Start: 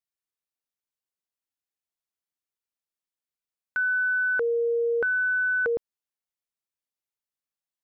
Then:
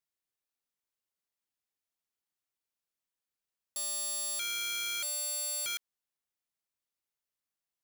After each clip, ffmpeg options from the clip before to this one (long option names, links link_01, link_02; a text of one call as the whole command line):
ffmpeg -i in.wav -af "aeval=exprs='(mod(26.6*val(0)+1,2)-1)/26.6':channel_layout=same" out.wav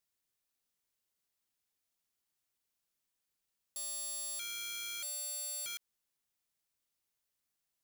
ffmpeg -i in.wav -af "alimiter=level_in=15.5dB:limit=-24dB:level=0:latency=1,volume=-15.5dB,equalizer=frequency=940:width=0.31:gain=-4,volume=6dB" out.wav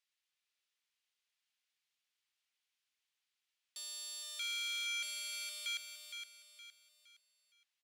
ffmpeg -i in.wav -af "bandpass=frequency=2800:width_type=q:width=1.2:csg=0,aecho=1:1:465|930|1395|1860:0.447|0.165|0.0612|0.0226,volume=5.5dB" out.wav